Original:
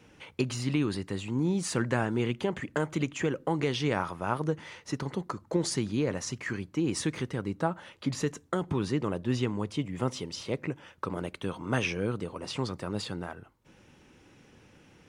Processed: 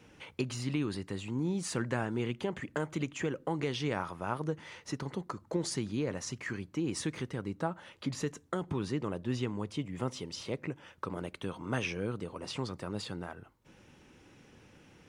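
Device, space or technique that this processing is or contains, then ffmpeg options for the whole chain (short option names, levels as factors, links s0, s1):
parallel compression: -filter_complex "[0:a]asplit=2[s0][s1];[s1]acompressor=threshold=0.01:ratio=6,volume=0.794[s2];[s0][s2]amix=inputs=2:normalize=0,volume=0.501"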